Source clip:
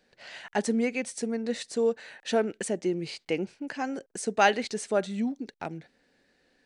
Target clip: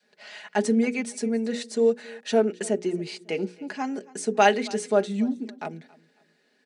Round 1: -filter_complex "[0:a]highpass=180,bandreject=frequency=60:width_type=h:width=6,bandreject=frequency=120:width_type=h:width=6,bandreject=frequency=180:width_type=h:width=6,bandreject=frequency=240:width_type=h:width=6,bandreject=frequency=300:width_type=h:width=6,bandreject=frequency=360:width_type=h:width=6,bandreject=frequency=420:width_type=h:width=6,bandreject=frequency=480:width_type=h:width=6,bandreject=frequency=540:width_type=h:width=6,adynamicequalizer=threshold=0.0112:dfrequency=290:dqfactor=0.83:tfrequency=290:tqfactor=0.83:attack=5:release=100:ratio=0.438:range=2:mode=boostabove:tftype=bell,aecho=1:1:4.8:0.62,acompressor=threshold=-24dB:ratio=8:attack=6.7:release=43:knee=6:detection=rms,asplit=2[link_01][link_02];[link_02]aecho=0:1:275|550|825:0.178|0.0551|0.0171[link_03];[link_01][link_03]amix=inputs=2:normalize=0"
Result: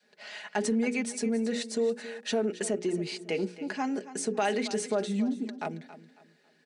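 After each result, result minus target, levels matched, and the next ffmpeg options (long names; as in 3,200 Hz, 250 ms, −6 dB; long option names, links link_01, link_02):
downward compressor: peak gain reduction +11.5 dB; echo-to-direct +7.5 dB
-filter_complex "[0:a]highpass=180,bandreject=frequency=60:width_type=h:width=6,bandreject=frequency=120:width_type=h:width=6,bandreject=frequency=180:width_type=h:width=6,bandreject=frequency=240:width_type=h:width=6,bandreject=frequency=300:width_type=h:width=6,bandreject=frequency=360:width_type=h:width=6,bandreject=frequency=420:width_type=h:width=6,bandreject=frequency=480:width_type=h:width=6,bandreject=frequency=540:width_type=h:width=6,adynamicequalizer=threshold=0.0112:dfrequency=290:dqfactor=0.83:tfrequency=290:tqfactor=0.83:attack=5:release=100:ratio=0.438:range=2:mode=boostabove:tftype=bell,aecho=1:1:4.8:0.62,asplit=2[link_01][link_02];[link_02]aecho=0:1:275|550|825:0.178|0.0551|0.0171[link_03];[link_01][link_03]amix=inputs=2:normalize=0"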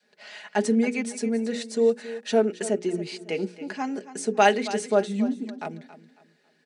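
echo-to-direct +7.5 dB
-filter_complex "[0:a]highpass=180,bandreject=frequency=60:width_type=h:width=6,bandreject=frequency=120:width_type=h:width=6,bandreject=frequency=180:width_type=h:width=6,bandreject=frequency=240:width_type=h:width=6,bandreject=frequency=300:width_type=h:width=6,bandreject=frequency=360:width_type=h:width=6,bandreject=frequency=420:width_type=h:width=6,bandreject=frequency=480:width_type=h:width=6,bandreject=frequency=540:width_type=h:width=6,adynamicequalizer=threshold=0.0112:dfrequency=290:dqfactor=0.83:tfrequency=290:tqfactor=0.83:attack=5:release=100:ratio=0.438:range=2:mode=boostabove:tftype=bell,aecho=1:1:4.8:0.62,asplit=2[link_01][link_02];[link_02]aecho=0:1:275|550:0.075|0.0232[link_03];[link_01][link_03]amix=inputs=2:normalize=0"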